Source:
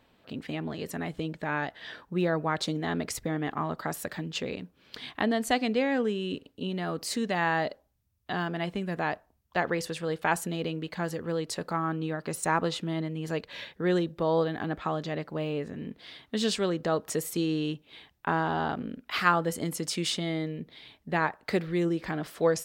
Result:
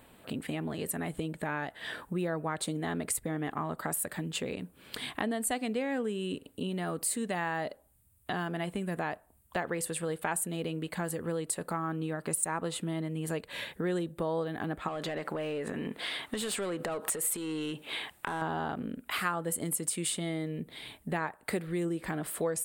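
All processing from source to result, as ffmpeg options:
ffmpeg -i in.wav -filter_complex "[0:a]asettb=1/sr,asplit=3[link_01][link_02][link_03];[link_01]atrim=end=14.884[link_04];[link_02]atrim=start=14.88:end=18.42,asetpts=PTS-STARTPTS,afade=type=in:duration=0.004:curve=qsin,afade=type=out:start_time=3.536:duration=0.004:curve=qsin,asplit=2[link_05][link_06];[link_06]highpass=frequency=720:poles=1,volume=20dB,asoftclip=type=tanh:threshold=-12dB[link_07];[link_05][link_07]amix=inputs=2:normalize=0,lowpass=frequency=3400:poles=1,volume=-6dB,acompressor=threshold=-30dB:ratio=10:attack=3.2:release=140:knee=1:detection=peak[link_08];[link_03]atrim=start=18.416[link_09];[link_04][link_08]acrossfade=duration=0.004:curve1=hsin:curve2=qsin[link_10];[link_10][link_09]acrossfade=duration=0.004:curve1=qsin:curve2=hsin,highshelf=frequency=7100:width_type=q:width=3:gain=8.5,acompressor=threshold=-42dB:ratio=2.5,volume=6.5dB" out.wav

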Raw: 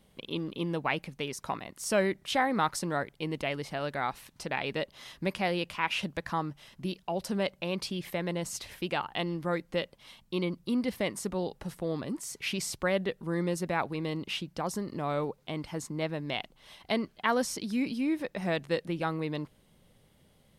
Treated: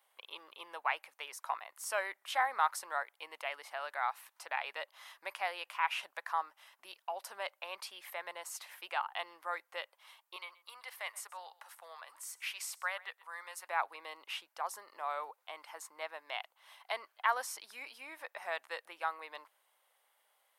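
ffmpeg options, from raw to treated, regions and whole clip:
ffmpeg -i in.wav -filter_complex "[0:a]asettb=1/sr,asplit=3[link_01][link_02][link_03];[link_01]atrim=end=10.364[link_04];[link_02]atrim=start=10.36:end=13.68,asetpts=PTS-STARTPTS,afade=type=in:duration=0.004:curve=qsin,afade=type=out:start_time=3.316:duration=0.004:curve=qsin,highpass=850,aecho=1:1:127:0.0944,atrim=end_sample=146412[link_05];[link_03]atrim=start=13.676[link_06];[link_04][link_05]acrossfade=duration=0.004:curve1=hsin:curve2=qsin[link_07];[link_07][link_06]acrossfade=duration=0.004:curve1=qsin:curve2=hsin,highpass=frequency=850:width=0.5412,highpass=frequency=850:width=1.3066,equalizer=frequency=4700:width=0.45:gain=-12,volume=3dB" out.wav

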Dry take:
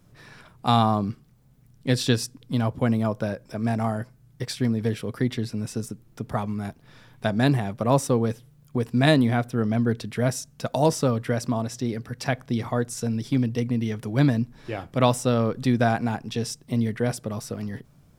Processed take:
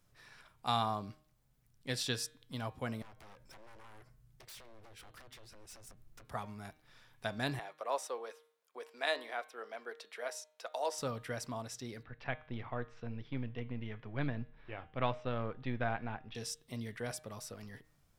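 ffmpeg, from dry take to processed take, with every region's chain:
ffmpeg -i in.wav -filter_complex "[0:a]asettb=1/sr,asplit=3[link_01][link_02][link_03];[link_01]atrim=end=3.024[link_04];[link_02]atrim=start=3.02:end=6.25,asetpts=PTS-STARTPTS,afade=type=in:duration=0.004:curve=qsin,afade=type=out:start_time=3.226:duration=0.004:curve=qsin,lowshelf=frequency=190:gain=10,acompressor=threshold=-31dB:ratio=16:attack=3.2:release=140:knee=1:detection=peak,aeval=exprs='0.0133*(abs(mod(val(0)/0.0133+3,4)-2)-1)':channel_layout=same[link_05];[link_03]atrim=start=6.246[link_06];[link_04][link_05]acrossfade=duration=0.004:curve1=hsin:curve2=qsin[link_07];[link_07][link_06]acrossfade=duration=0.004:curve1=qsin:curve2=hsin,asettb=1/sr,asplit=3[link_08][link_09][link_10];[link_08]atrim=end=7.594[link_11];[link_09]atrim=start=7.59:end=10.98,asetpts=PTS-STARTPTS,afade=type=in:duration=0.004:curve=qsin,afade=type=out:start_time=3.386:duration=0.004:curve=qsin,highpass=frequency=430:width=0.5412,highpass=frequency=430:width=1.3066,highshelf=frequency=5400:gain=-8.5[link_12];[link_10]atrim=start=10.976[link_13];[link_11][link_12]acrossfade=duration=0.004:curve1=hsin:curve2=qsin[link_14];[link_14][link_13]acrossfade=duration=0.004:curve1=qsin:curve2=hsin,asettb=1/sr,asplit=3[link_15][link_16][link_17];[link_15]atrim=end=12.034[link_18];[link_16]atrim=start=12.03:end=16.35,asetpts=PTS-STARTPTS,afade=type=in:duration=0.004:curve=qsin,afade=type=out:start_time=4.316:duration=0.004:curve=qsin,aeval=exprs='if(lt(val(0),0),0.708*val(0),val(0))':channel_layout=same,lowpass=frequency=3000:width=0.5412,lowpass=frequency=3000:width=1.3066,lowshelf=frequency=150:gain=5[link_19];[link_17]atrim=start=16.346[link_20];[link_18][link_19]acrossfade=duration=0.004:curve1=hsin:curve2=qsin[link_21];[link_21][link_20]acrossfade=duration=0.004:curve1=qsin:curve2=hsin,equalizer=frequency=190:width=0.38:gain=-11.5,bandreject=frequency=154.3:width_type=h:width=4,bandreject=frequency=308.6:width_type=h:width=4,bandreject=frequency=462.9:width_type=h:width=4,bandreject=frequency=617.2:width_type=h:width=4,bandreject=frequency=771.5:width_type=h:width=4,bandreject=frequency=925.8:width_type=h:width=4,bandreject=frequency=1080.1:width_type=h:width=4,bandreject=frequency=1234.4:width_type=h:width=4,bandreject=frequency=1388.7:width_type=h:width=4,bandreject=frequency=1543:width_type=h:width=4,bandreject=frequency=1697.3:width_type=h:width=4,bandreject=frequency=1851.6:width_type=h:width=4,bandreject=frequency=2005.9:width_type=h:width=4,bandreject=frequency=2160.2:width_type=h:width=4,bandreject=frequency=2314.5:width_type=h:width=4,bandreject=frequency=2468.8:width_type=h:width=4,bandreject=frequency=2623.1:width_type=h:width=4,bandreject=frequency=2777.4:width_type=h:width=4,bandreject=frequency=2931.7:width_type=h:width=4,bandreject=frequency=3086:width_type=h:width=4,bandreject=frequency=3240.3:width_type=h:width=4,bandreject=frequency=3394.6:width_type=h:width=4,bandreject=frequency=3548.9:width_type=h:width=4,bandreject=frequency=3703.2:width_type=h:width=4,bandreject=frequency=3857.5:width_type=h:width=4,bandreject=frequency=4011.8:width_type=h:width=4,bandreject=frequency=4166.1:width_type=h:width=4,bandreject=frequency=4320.4:width_type=h:width=4,volume=-8dB" out.wav

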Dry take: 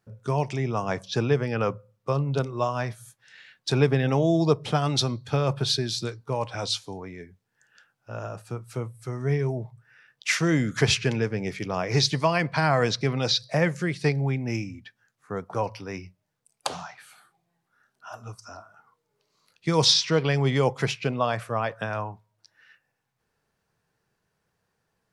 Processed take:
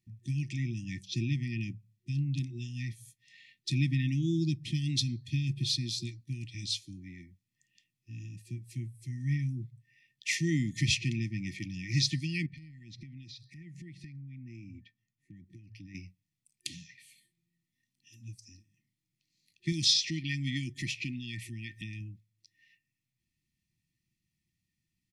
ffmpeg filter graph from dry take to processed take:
ffmpeg -i in.wav -filter_complex "[0:a]asettb=1/sr,asplit=3[link_01][link_02][link_03];[link_01]atrim=end=12.464[link_04];[link_02]atrim=start=12.46:end=15.95,asetpts=PTS-STARTPTS,afade=type=in:duration=0.004:curve=qsin,afade=type=out:start_time=3.486:duration=0.004:curve=qsin,highshelf=frequency=2900:gain=-12,acompressor=threshold=-36dB:ratio=20:attack=3.2:release=140:knee=1:detection=peak,asoftclip=type=hard:threshold=-28.5dB[link_05];[link_03]atrim=start=15.946[link_06];[link_04][link_05]acrossfade=duration=0.004:curve1=hsin:curve2=qsin[link_07];[link_07][link_06]acrossfade=duration=0.004:curve1=qsin:curve2=hsin,asettb=1/sr,asplit=3[link_08][link_09][link_10];[link_08]atrim=end=19.724[link_11];[link_09]atrim=start=19.72:end=22.01,asetpts=PTS-STARTPTS,afade=type=in:duration=0.004:curve=qsin,afade=type=out:start_time=2.286:duration=0.004:curve=qsin,acompressor=mode=upward:threshold=-24dB:ratio=2.5:attack=3.2:release=140:knee=2.83:detection=peak,equalizer=frequency=140:width=2:gain=-6[link_12];[link_10]atrim=start=22.006[link_13];[link_11][link_12]acrossfade=duration=0.004:curve1=hsin:curve2=qsin[link_14];[link_14][link_13]acrossfade=duration=0.004:curve1=qsin:curve2=hsin,afftfilt=real='re*(1-between(b*sr/4096,360,1800))':imag='im*(1-between(b*sr/4096,360,1800))':win_size=4096:overlap=0.75,aecho=1:1:1.2:0.33,volume=-6dB" out.wav

